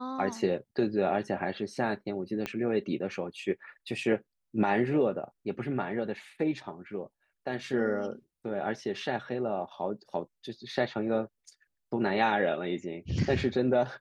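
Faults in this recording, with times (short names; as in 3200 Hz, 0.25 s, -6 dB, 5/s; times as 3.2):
2.46 pop -18 dBFS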